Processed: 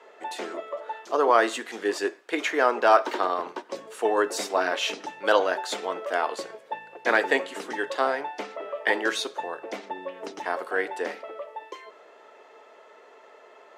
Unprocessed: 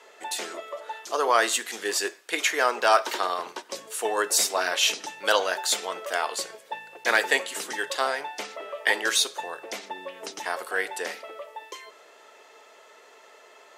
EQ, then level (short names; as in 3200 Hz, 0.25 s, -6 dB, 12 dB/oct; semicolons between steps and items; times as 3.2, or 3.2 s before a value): LPF 1100 Hz 6 dB/oct; low shelf 100 Hz -6.5 dB; dynamic EQ 280 Hz, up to +6 dB, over -48 dBFS, Q 2.2; +4.0 dB